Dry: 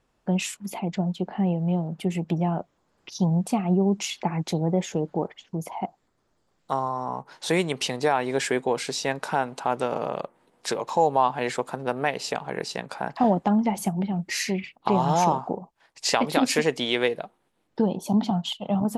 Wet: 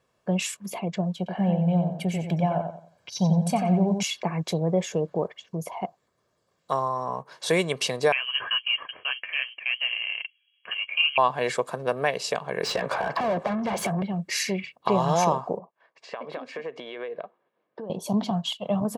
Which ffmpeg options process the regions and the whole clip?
-filter_complex "[0:a]asettb=1/sr,asplit=3[a][b][c];[a]atrim=end=1.174[d];[b]atrim=start=1.17:end=4.03,asetpts=PTS-STARTPTS,afade=t=in:d=0.004:c=qsin,afade=t=out:st=2.856:d=0.004:c=qsin,aecho=1:1:1.3:0.52,atrim=end_sample=126126,asplit=2[e][f];[f]adelay=90,lowpass=f=3.7k:p=1,volume=-6dB,asplit=2[g][h];[h]adelay=90,lowpass=f=3.7k:p=1,volume=0.32,asplit=2[i][j];[j]adelay=90,lowpass=f=3.7k:p=1,volume=0.32,asplit=2[k][l];[l]adelay=90,lowpass=f=3.7k:p=1,volume=0.32[m];[e][g][i][k][m]amix=inputs=5:normalize=0,atrim=end_sample=126126[n];[c]atrim=start=4.026[o];[d][n]acrossfade=d=0.004:c1=hsin:c2=qsin[p];[p][o]acrossfade=d=0.004:c1=qsin:c2=hsin,asettb=1/sr,asplit=3[q][r][s];[q]atrim=end=8.124[t];[r]atrim=start=8.12:end=11.18,asetpts=PTS-STARTPTS,afade=t=in:d=0.004:c=qsin,afade=t=out:st=3.056:d=0.004:c=qsin,flanger=delay=1.1:depth=9.7:regen=30:speed=1.3:shape=sinusoidal,adynamicsmooth=sensitivity=8:basefreq=770,lowpass=f=2.8k:t=q:w=0.5098,lowpass=f=2.8k:t=q:w=0.6013,lowpass=f=2.8k:t=q:w=0.9,lowpass=f=2.8k:t=q:w=2.563,afreqshift=-3300[u];[s]atrim=start=11.176[v];[t][u]acrossfade=d=0.004:c1=hsin:c2=qsin[w];[w][v]acrossfade=d=0.004:c1=qsin:c2=hsin,asettb=1/sr,asplit=3[x][y][z];[x]atrim=end=12.634[aa];[y]atrim=start=12.63:end=14.02,asetpts=PTS-STARTPTS,afade=t=in:d=0.004:c=qsin,afade=t=out:st=1.386:d=0.004:c=qsin,asplit=2[ab][ac];[ac]highpass=f=720:p=1,volume=29dB,asoftclip=type=tanh:threshold=-9.5dB[ad];[ab][ad]amix=inputs=2:normalize=0,lowpass=f=1.1k:p=1,volume=-6dB,acompressor=threshold=-23dB:ratio=6:attack=3.2:release=140:knee=1:detection=peak[ae];[z]atrim=start=14.016[af];[aa][ae]acrossfade=d=0.004:c1=hsin:c2=qsin[ag];[ag][af]acrossfade=d=0.004:c1=qsin:c2=hsin,asettb=1/sr,asplit=3[ah][ai][aj];[ah]atrim=end=15.594[ak];[ai]atrim=start=15.59:end=17.9,asetpts=PTS-STARTPTS,afade=t=in:d=0.004:c=qsin,afade=t=out:st=2.306:d=0.004:c=qsin,acompressor=threshold=-29dB:ratio=16:attack=3.2:release=140:knee=1:detection=peak,highpass=250,lowpass=2k[al];[aj]atrim=start=17.896[am];[ak][al]acrossfade=d=0.004:c1=hsin:c2=qsin[an];[an][am]acrossfade=d=0.004:c1=qsin:c2=hsin,highpass=110,aecho=1:1:1.8:0.49"

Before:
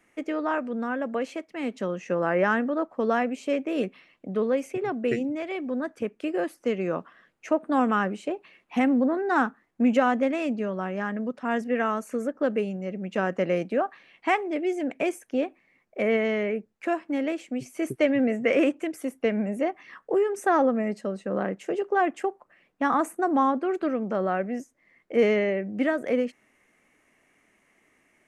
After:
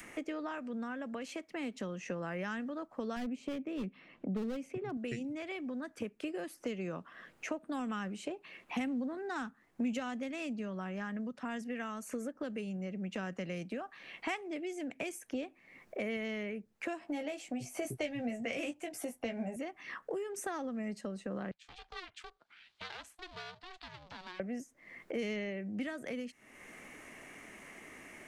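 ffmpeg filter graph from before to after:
-filter_complex "[0:a]asettb=1/sr,asplit=3[a][b][c];[a]atrim=end=3.164[d];[b]atrim=start=3.16:end=4.97,asetpts=PTS-STARTPTS,afade=t=in:d=0.004:c=qsin,afade=t=out:st=1.806:d=0.004:c=qsin,lowpass=f=1.8k:p=1,equalizer=f=220:w=1.3:g=5.5,asoftclip=type=hard:threshold=-19.5dB[e];[c]atrim=start=4.966[f];[d][e]acrossfade=d=0.004:c1=hsin:c2=qsin[g];[g][f]acrossfade=d=0.004:c1=qsin:c2=hsin,asettb=1/sr,asplit=3[h][i][j];[h]atrim=end=17.004[k];[i]atrim=start=17:end=19.56,asetpts=PTS-STARTPTS,afade=t=in:d=0.004:c=qsin,afade=t=out:st=2.556:d=0.004:c=qsin,equalizer=f=730:t=o:w=0.66:g=13,asplit=2[l][m];[m]adelay=17,volume=-4.5dB[n];[l][n]amix=inputs=2:normalize=0,atrim=end_sample=112896[o];[j]atrim=start=19.556[p];[k][o]acrossfade=d=0.004:c1=hsin:c2=qsin[q];[q][p]acrossfade=d=0.004:c1=qsin:c2=hsin,asettb=1/sr,asplit=3[r][s][t];[r]atrim=end=21.514[u];[s]atrim=start=21.51:end=24.4,asetpts=PTS-STARTPTS,afade=t=in:d=0.004:c=qsin,afade=t=out:st=2.886:d=0.004:c=qsin,aeval=exprs='clip(val(0),-1,0.0282)':c=same,bandpass=f=3.9k:t=q:w=3.5,aeval=exprs='val(0)*sin(2*PI*370*n/s)':c=same[v];[t]atrim=start=24.396[w];[u][v]acrossfade=d=0.004:c1=hsin:c2=qsin[x];[x][w]acrossfade=d=0.004:c1=qsin:c2=hsin,acrossover=split=160|3000[y][z][aa];[z]acompressor=threshold=-34dB:ratio=6[ab];[y][ab][aa]amix=inputs=3:normalize=0,adynamicequalizer=threshold=0.00562:dfrequency=500:dqfactor=0.93:tfrequency=500:tqfactor=0.93:attack=5:release=100:ratio=0.375:range=2.5:mode=cutabove:tftype=bell,acompressor=mode=upward:threshold=-34dB:ratio=2.5,volume=-3dB"

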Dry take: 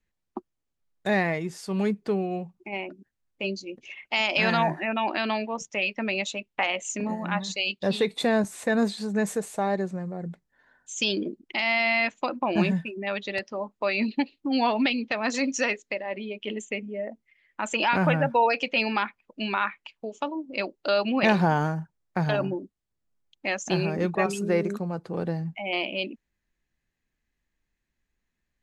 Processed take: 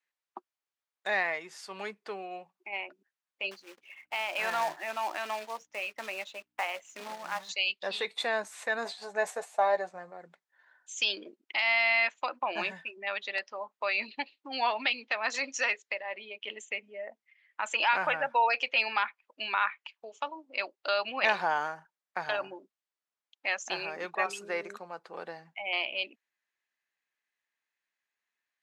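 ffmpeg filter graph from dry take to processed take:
-filter_complex "[0:a]asettb=1/sr,asplit=3[a][b][c];[a]atrim=end=3.514[d];[b]atrim=start=3.51:end=7.49,asetpts=PTS-STARTPTS,afade=t=in:d=0.004:c=qsin,afade=t=out:st=3.976:d=0.004:c=qsin,lowpass=f=1.1k:p=1,acrusher=bits=3:mode=log:mix=0:aa=0.000001,aeval=exprs='val(0)+0.00126*(sin(2*PI*60*n/s)+sin(2*PI*2*60*n/s)/2+sin(2*PI*3*60*n/s)/3+sin(2*PI*4*60*n/s)/4+sin(2*PI*5*60*n/s)/5)':c=same[e];[c]atrim=start=7.486[f];[d][e]acrossfade=d=0.004:c1=hsin:c2=qsin[g];[g][f]acrossfade=d=0.004:c1=qsin:c2=hsin,asettb=1/sr,asplit=3[h][i][j];[h]atrim=end=8.854[k];[i]atrim=start=8.85:end=10.12,asetpts=PTS-STARTPTS,afade=t=in:d=0.004:c=qsin,afade=t=out:st=1.266:d=0.004:c=qsin,agate=range=-7dB:threshold=-35dB:ratio=16:release=100:detection=peak,equalizer=f=710:w=2:g=11.5,asplit=2[l][m];[m]adelay=12,volume=-6.5dB[n];[l][n]amix=inputs=2:normalize=0,atrim=end_sample=56007[o];[j]atrim=start=10.116[p];[k][o]acrossfade=d=0.004:c1=hsin:c2=qsin[q];[q][p]acrossfade=d=0.004:c1=qsin:c2=hsin,highpass=870,highshelf=f=7.3k:g=-11.5"

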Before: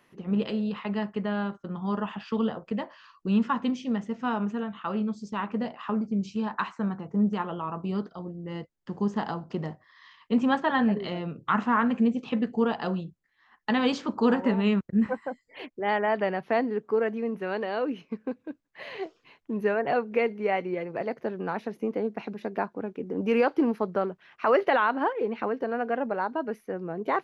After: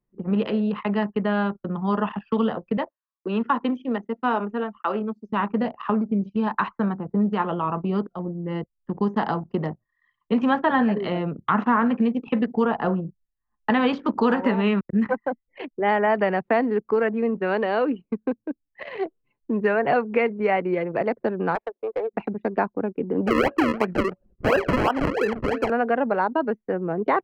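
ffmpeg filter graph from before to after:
-filter_complex "[0:a]asettb=1/sr,asplit=3[a][b][c];[a]atrim=end=2.774[d];[b]atrim=start=2.77:end=5.29,asetpts=PTS-STARTPTS,afade=t=in:d=0.004:c=qsin,afade=t=out:st=2.516:d=0.004:c=qsin,agate=range=-18dB:threshold=-46dB:ratio=16:release=100:detection=peak,highpass=f=270:w=0.5412,highpass=f=270:w=1.3066[e];[c]atrim=start=5.286[f];[d][e]acrossfade=d=0.004:c1=hsin:c2=qsin[g];[g][f]acrossfade=d=0.004:c1=qsin:c2=hsin,asettb=1/sr,asplit=3[h][i][j];[h]atrim=end=12.654[k];[i]atrim=start=12.65:end=13.7,asetpts=PTS-STARTPTS,afade=t=in:d=0.004:c=qsin,afade=t=out:st=1.046:d=0.004:c=qsin,lowpass=1.8k,lowshelf=f=83:g=6.5[l];[j]atrim=start=13.696[m];[k][l]acrossfade=d=0.004:c1=hsin:c2=qsin[n];[n][m]acrossfade=d=0.004:c1=qsin:c2=hsin,asettb=1/sr,asplit=3[o][p][q];[o]atrim=end=21.554[r];[p]atrim=start=21.55:end=22.14,asetpts=PTS-STARTPTS,afade=t=in:d=0.004:c=qsin,afade=t=out:st=0.586:d=0.004:c=qsin,highpass=f=480:w=0.5412,highpass=f=480:w=1.3066,adynamicsmooth=sensitivity=6:basefreq=1.5k,aeval=exprs='clip(val(0),-1,0.0398)':c=same[s];[q]atrim=start=22.136[t];[r][s]acrossfade=d=0.004:c1=hsin:c2=qsin[u];[u][t]acrossfade=d=0.004:c1=qsin:c2=hsin,asettb=1/sr,asplit=3[v][w][x];[v]atrim=end=23.274[y];[w]atrim=start=23.27:end=25.7,asetpts=PTS-STARTPTS,afade=t=in:d=0.004:c=qsin,afade=t=out:st=2.426:d=0.004:c=qsin,bandreject=f=112.2:t=h:w=4,bandreject=f=224.4:t=h:w=4,bandreject=f=336.6:t=h:w=4,bandreject=f=448.8:t=h:w=4,bandreject=f=561:t=h:w=4,bandreject=f=673.2:t=h:w=4,acrusher=samples=39:mix=1:aa=0.000001:lfo=1:lforange=39:lforate=2.9,asuperstop=centerf=3600:order=12:qfactor=6.6[z];[x]atrim=start=25.696[aa];[y][z]acrossfade=d=0.004:c1=hsin:c2=qsin[ab];[ab][aa]acrossfade=d=0.004:c1=qsin:c2=hsin,acrossover=split=2800[ac][ad];[ad]acompressor=threshold=-52dB:ratio=4:attack=1:release=60[ae];[ac][ae]amix=inputs=2:normalize=0,anlmdn=0.631,acrossover=split=220|820[af][ag][ah];[af]acompressor=threshold=-38dB:ratio=4[ai];[ag]acompressor=threshold=-29dB:ratio=4[aj];[ah]acompressor=threshold=-30dB:ratio=4[ak];[ai][aj][ak]amix=inputs=3:normalize=0,volume=8dB"

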